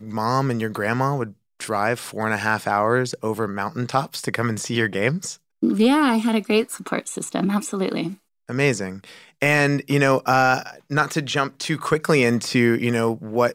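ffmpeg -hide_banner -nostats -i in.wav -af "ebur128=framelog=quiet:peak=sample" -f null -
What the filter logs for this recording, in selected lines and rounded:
Integrated loudness:
  I:         -21.6 LUFS
  Threshold: -31.9 LUFS
Loudness range:
  LRA:         3.5 LU
  Threshold: -41.9 LUFS
  LRA low:   -23.6 LUFS
  LRA high:  -20.1 LUFS
Sample peak:
  Peak:       -4.7 dBFS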